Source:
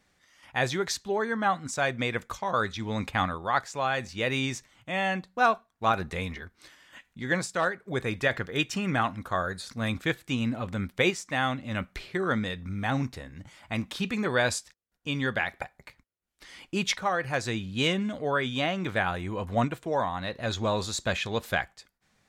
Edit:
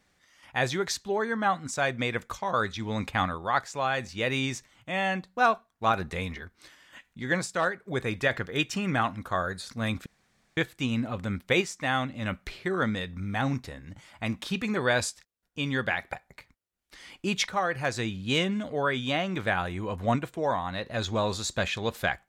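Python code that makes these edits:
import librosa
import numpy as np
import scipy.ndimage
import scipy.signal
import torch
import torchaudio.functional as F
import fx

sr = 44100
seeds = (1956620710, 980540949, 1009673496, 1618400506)

y = fx.edit(x, sr, fx.insert_room_tone(at_s=10.06, length_s=0.51), tone=tone)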